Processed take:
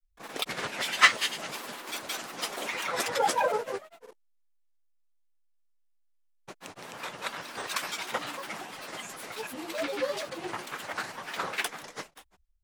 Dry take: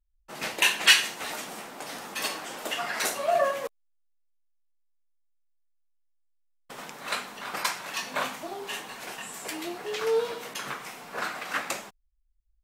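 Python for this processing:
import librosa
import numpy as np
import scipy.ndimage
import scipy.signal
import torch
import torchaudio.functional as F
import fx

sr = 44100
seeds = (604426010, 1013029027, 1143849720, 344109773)

y = x + 10.0 ** (-16.0 / 20.0) * np.pad(x, (int(192 * sr / 1000.0), 0))[:len(x)]
y = fx.granulator(y, sr, seeds[0], grain_ms=100.0, per_s=20.0, spray_ms=271.0, spread_st=7)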